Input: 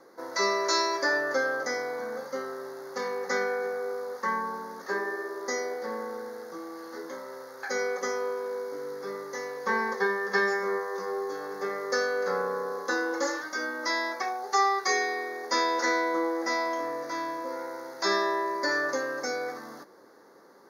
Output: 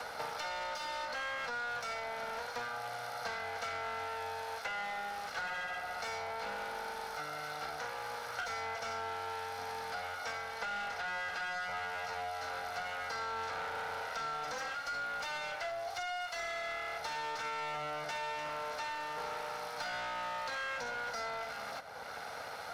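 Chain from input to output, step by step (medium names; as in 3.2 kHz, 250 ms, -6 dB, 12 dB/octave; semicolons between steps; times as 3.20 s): comb filter that takes the minimum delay 1.3 ms; high-pass 85 Hz; peaking EQ 260 Hz -7.5 dB 2 oct; peak limiter -26 dBFS, peak gain reduction 11 dB; overdrive pedal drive 12 dB, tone 4.2 kHz, clips at -26 dBFS; tape speed -9%; three bands compressed up and down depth 100%; trim -6 dB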